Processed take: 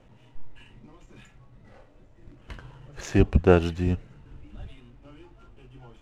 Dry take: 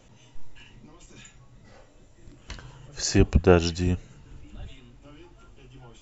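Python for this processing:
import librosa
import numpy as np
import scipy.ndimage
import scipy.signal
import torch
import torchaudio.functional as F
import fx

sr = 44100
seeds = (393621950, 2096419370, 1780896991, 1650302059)

y = scipy.ndimage.median_filter(x, 9, mode='constant')
y = scipy.signal.sosfilt(scipy.signal.bessel(2, 6000.0, 'lowpass', norm='mag', fs=sr, output='sos'), y)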